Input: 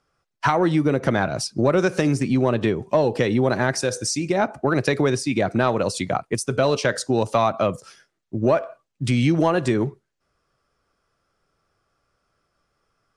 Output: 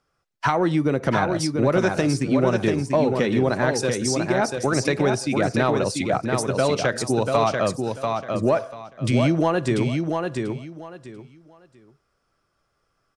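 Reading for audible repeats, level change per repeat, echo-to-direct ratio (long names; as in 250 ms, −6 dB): 3, −13.0 dB, −4.5 dB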